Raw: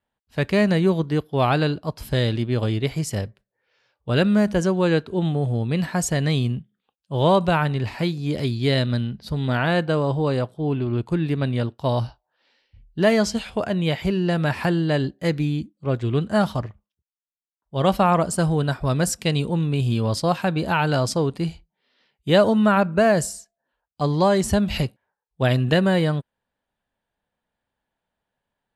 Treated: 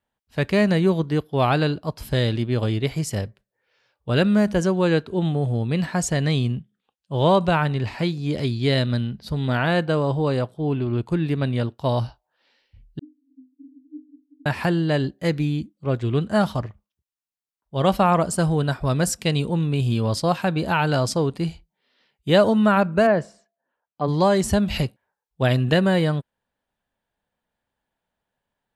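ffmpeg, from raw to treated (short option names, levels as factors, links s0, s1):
-filter_complex "[0:a]asettb=1/sr,asplit=3[s0][s1][s2];[s0]atrim=end=5.774[s3];[s1]atrim=start=5.77:end=8.71,asetpts=PTS-STARTPTS,afade=t=in:d=0.004:c=qsin,afade=t=out:st=2.936:d=0.004:c=qsin,lowpass=10000[s4];[s2]atrim=start=8.706[s5];[s3][s4]acrossfade=d=0.004:c1=hsin:c2=qsin[s6];[s6][s5]acrossfade=d=0.004:c1=qsin:c2=hsin,asettb=1/sr,asplit=3[s7][s8][s9];[s7]atrim=end=12.994[s10];[s8]atrim=start=12.99:end=14.46,asetpts=PTS-STARTPTS,afade=t=in:d=0.004:c=qsin,afade=t=out:st=1.466:d=0.004:c=qsin,asuperpass=centerf=280:order=20:qfactor=5.4[s11];[s9]atrim=start=14.456[s12];[s10][s11]acrossfade=d=0.004:c1=hsin:c2=qsin[s13];[s13][s12]acrossfade=d=0.004:c1=qsin:c2=hsin,asplit=3[s14][s15][s16];[s14]afade=t=out:st=23.06:d=0.02[s17];[s15]highpass=170,lowpass=2100,afade=t=in:st=23.06:d=0.02,afade=t=out:st=24.07:d=0.02[s18];[s16]afade=t=in:st=24.07:d=0.02[s19];[s17][s18][s19]amix=inputs=3:normalize=0"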